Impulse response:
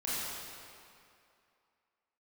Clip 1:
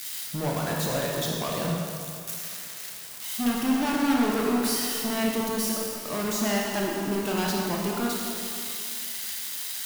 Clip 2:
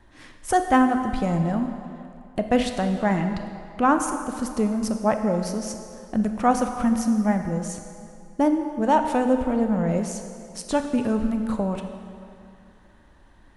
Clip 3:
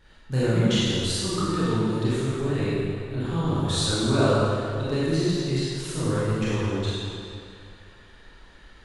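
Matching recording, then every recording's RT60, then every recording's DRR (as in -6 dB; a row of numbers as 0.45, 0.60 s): 3; 2.5, 2.5, 2.5 s; -2.0, 6.0, -10.0 dB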